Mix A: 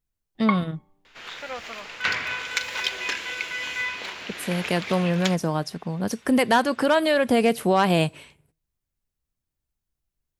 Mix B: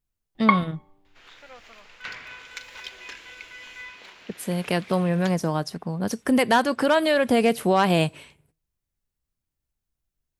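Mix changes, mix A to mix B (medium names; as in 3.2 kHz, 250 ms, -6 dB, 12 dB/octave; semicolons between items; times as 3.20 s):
first sound +6.0 dB; second sound -12.0 dB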